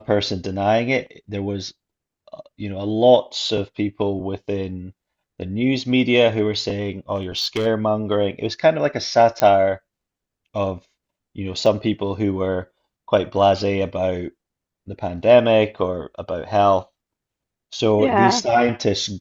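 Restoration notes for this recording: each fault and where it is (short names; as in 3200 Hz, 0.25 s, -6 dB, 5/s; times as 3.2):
7.15–7.67 clipped -17 dBFS
9.4 pop -5 dBFS
11.66 gap 3 ms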